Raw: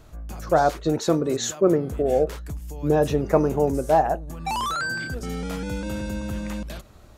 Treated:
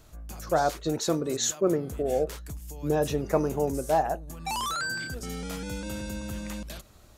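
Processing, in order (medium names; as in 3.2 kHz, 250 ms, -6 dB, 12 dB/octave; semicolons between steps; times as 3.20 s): treble shelf 3.3 kHz +9 dB; trim -6 dB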